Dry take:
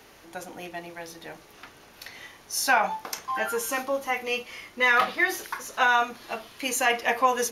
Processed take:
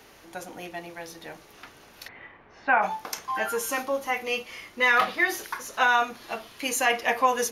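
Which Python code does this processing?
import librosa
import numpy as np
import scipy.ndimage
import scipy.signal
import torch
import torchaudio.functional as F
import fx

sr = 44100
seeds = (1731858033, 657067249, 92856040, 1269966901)

y = fx.lowpass(x, sr, hz=2300.0, slope=24, at=(2.07, 2.81), fade=0.02)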